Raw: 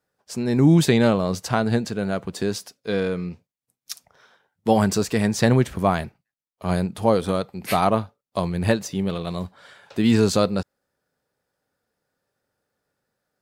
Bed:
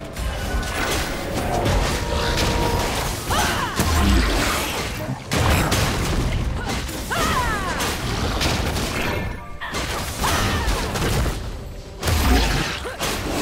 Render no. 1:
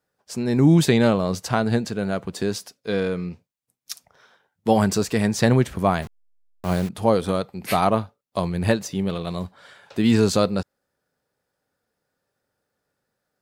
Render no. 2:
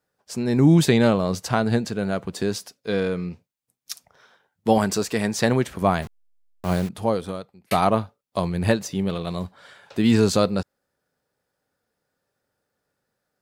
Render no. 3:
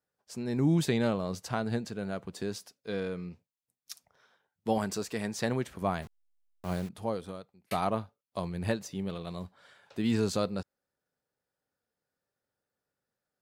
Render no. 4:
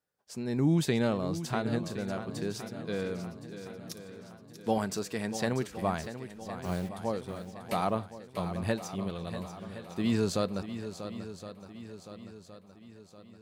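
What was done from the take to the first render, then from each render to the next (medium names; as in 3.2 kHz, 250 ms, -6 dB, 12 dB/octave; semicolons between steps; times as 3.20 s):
6.02–6.89 s: send-on-delta sampling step -32.5 dBFS
4.78–5.82 s: bass shelf 160 Hz -9.5 dB; 6.76–7.71 s: fade out
trim -10.5 dB
shuffle delay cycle 1066 ms, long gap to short 1.5:1, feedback 46%, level -11 dB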